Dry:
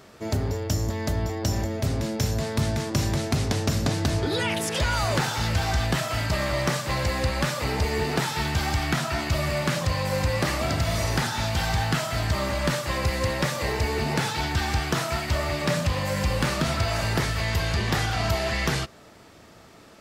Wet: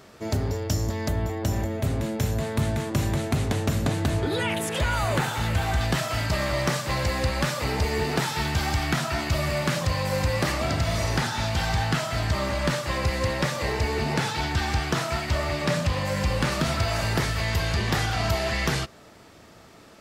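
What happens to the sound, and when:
0:01.08–0:05.81: parametric band 5,200 Hz −9.5 dB 0.61 octaves
0:10.52–0:16.52: high-shelf EQ 11,000 Hz −7.5 dB

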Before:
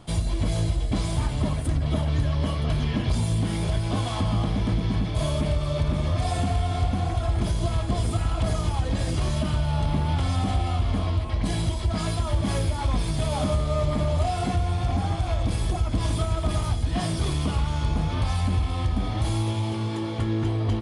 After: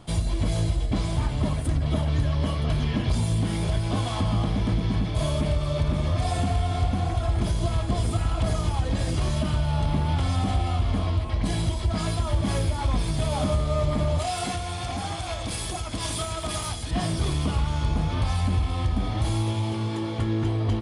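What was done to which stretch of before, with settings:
0:00.86–0:01.43: high-shelf EQ 7,600 Hz −8 dB
0:14.19–0:16.91: spectral tilt +2.5 dB per octave

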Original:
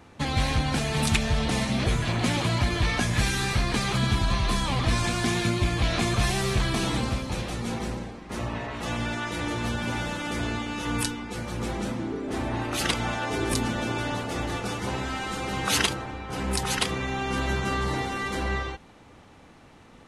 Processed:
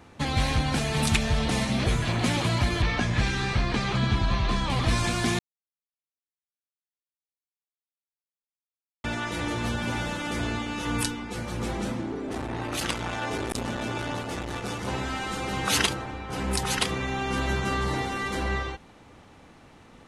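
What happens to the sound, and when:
0:02.82–0:04.70: high-frequency loss of the air 100 metres
0:05.39–0:09.04: silence
0:12.01–0:14.88: saturating transformer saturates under 1,100 Hz

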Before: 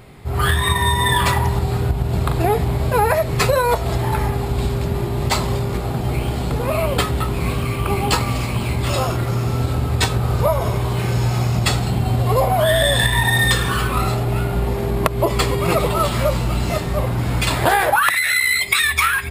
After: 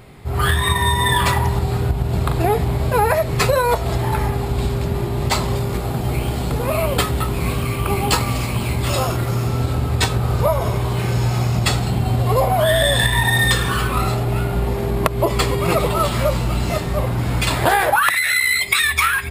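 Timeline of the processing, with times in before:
0:05.56–0:09.48: high-shelf EQ 7,900 Hz +5 dB

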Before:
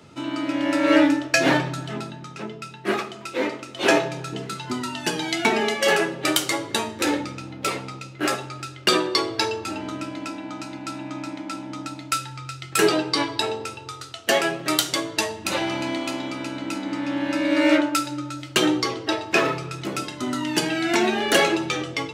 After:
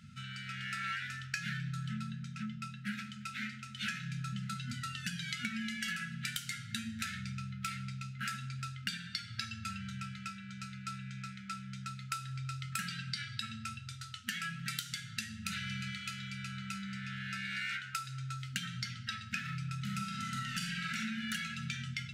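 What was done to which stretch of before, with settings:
0:19.79–0:20.98: thrown reverb, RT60 1.3 s, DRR −2.5 dB
whole clip: brick-wall band-stop 240–1,300 Hz; tilt shelving filter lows +4 dB, about 910 Hz; downward compressor 10 to 1, threshold −29 dBFS; level −5.5 dB

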